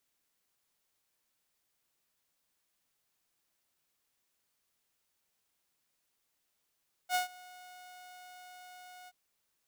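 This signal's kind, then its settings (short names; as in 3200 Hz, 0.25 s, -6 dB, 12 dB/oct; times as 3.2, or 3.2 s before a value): ADSR saw 728 Hz, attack 61 ms, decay 0.126 s, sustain -23.5 dB, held 1.99 s, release 38 ms -24 dBFS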